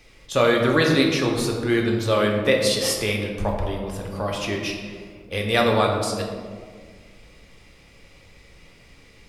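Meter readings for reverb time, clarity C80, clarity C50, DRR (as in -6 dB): 1.8 s, 5.0 dB, 3.5 dB, 0.0 dB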